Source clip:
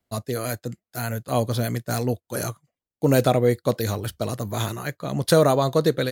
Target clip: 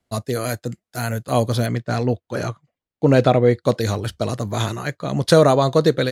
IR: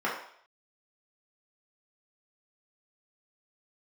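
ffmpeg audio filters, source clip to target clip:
-af "asetnsamples=nb_out_samples=441:pad=0,asendcmd='1.66 lowpass f 3900;3.62 lowpass f 7900',lowpass=11000,volume=4dB"

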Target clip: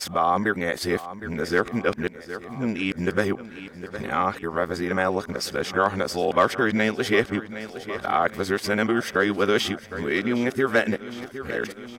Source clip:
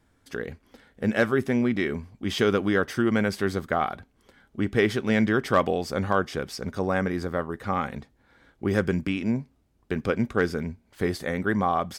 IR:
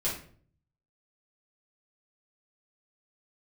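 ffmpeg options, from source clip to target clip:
-filter_complex "[0:a]areverse,aecho=1:1:761|1522|2283|3044|3805:0.141|0.0777|0.0427|0.0235|0.0129,asplit=2[link_01][link_02];[link_02]acompressor=threshold=-32dB:ratio=6,volume=3dB[link_03];[link_01][link_03]amix=inputs=2:normalize=0,equalizer=frequency=88:width=0.36:gain=-9.5,volume=1.5dB"

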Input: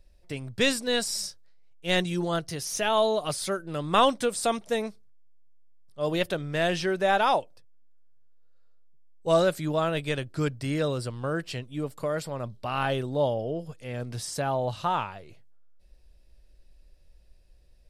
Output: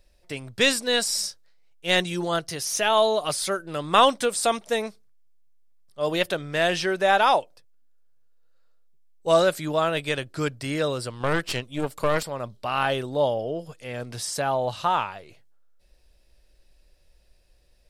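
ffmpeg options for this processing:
ffmpeg -i in.wav -filter_complex "[0:a]lowshelf=frequency=310:gain=-9,asettb=1/sr,asplit=3[link_01][link_02][link_03];[link_01]atrim=end=11.204[link_04];[link_02]atrim=start=11.2:end=12.23,asetpts=PTS-STARTPTS,afade=type=in:duration=0.004:curve=qsin,afade=type=out:start_time=1.026:duration=0.004:curve=qsin,aeval=exprs='0.1*(cos(1*acos(clip(val(0)/0.1,-1,1)))-cos(1*PI/2))+0.0355*(cos(4*acos(clip(val(0)/0.1,-1,1)))-cos(4*PI/2))+0.00631*(cos(5*acos(clip(val(0)/0.1,-1,1)))-cos(5*PI/2))':channel_layout=same[link_05];[link_03]atrim=start=12.226[link_06];[link_04][link_05]acrossfade=duration=0.004:curve1=hsin:curve2=qsin[link_07];[link_07][link_06]acrossfade=duration=0.004:curve1=qsin:curve2=hsin,volume=5dB" out.wav

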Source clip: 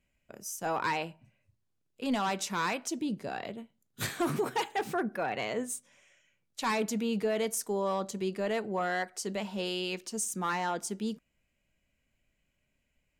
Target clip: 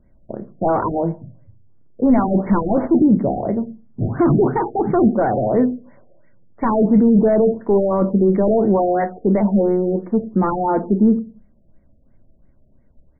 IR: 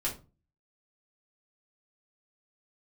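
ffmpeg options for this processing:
-filter_complex "[0:a]asettb=1/sr,asplit=3[link_01][link_02][link_03];[link_01]atrim=end=2.354[link_04];[link_02]atrim=start=2.35:end=3.05,asetpts=PTS-STARTPTS,afade=type=in:duration=0.004:curve=qsin,afade=type=out:start_time=0.696:duration=0.004:curve=qsin,aeval=exprs='val(0)+0.5*0.0133*sgn(val(0))':channel_layout=same[link_05];[link_03]atrim=start=3.046[link_06];[link_04][link_05]acrossfade=duration=0.004:curve1=hsin:curve2=qsin[link_07];[link_07][link_06]acrossfade=duration=0.004:curve1=qsin:curve2=hsin,asettb=1/sr,asplit=3[link_08][link_09][link_10];[link_08]atrim=end=3.594[link_11];[link_09]atrim=start=3.59:end=4.93,asetpts=PTS-STARTPTS,afade=type=in:duration=0.004:curve=qsin,afade=type=out:start_time=1.336:duration=0.004:curve=qsin,equalizer=frequency=520:width_type=o:width=0.57:gain=-6[link_12];[link_10]atrim=start=4.926[link_13];[link_11][link_12]acrossfade=duration=0.004:curve1=hsin:curve2=qsin[link_14];[link_14][link_13]acrossfade=duration=0.004:curve1=qsin:curve2=hsin,asplit=2[link_15][link_16];[1:a]atrim=start_sample=2205[link_17];[link_16][link_17]afir=irnorm=-1:irlink=0,volume=-11dB[link_18];[link_15][link_18]amix=inputs=2:normalize=0,apsyclip=27dB,firequalizer=gain_entry='entry(220,0);entry(1700,-14);entry(15000,-23)':delay=0.05:min_phase=1,afftfilt=real='re*lt(b*sr/1024,730*pow(2300/730,0.5+0.5*sin(2*PI*2.9*pts/sr)))':imag='im*lt(b*sr/1024,730*pow(2300/730,0.5+0.5*sin(2*PI*2.9*pts/sr)))':win_size=1024:overlap=0.75,volume=-7dB"

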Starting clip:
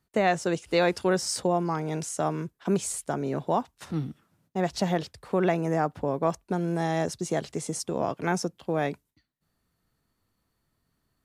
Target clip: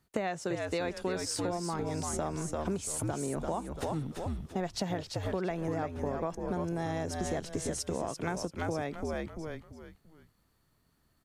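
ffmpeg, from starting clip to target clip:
ffmpeg -i in.wav -filter_complex "[0:a]asplit=5[link_01][link_02][link_03][link_04][link_05];[link_02]adelay=340,afreqshift=-79,volume=-6dB[link_06];[link_03]adelay=680,afreqshift=-158,volume=-15.4dB[link_07];[link_04]adelay=1020,afreqshift=-237,volume=-24.7dB[link_08];[link_05]adelay=1360,afreqshift=-316,volume=-34.1dB[link_09];[link_01][link_06][link_07][link_08][link_09]amix=inputs=5:normalize=0,acompressor=threshold=-33dB:ratio=6,volume=2.5dB" out.wav

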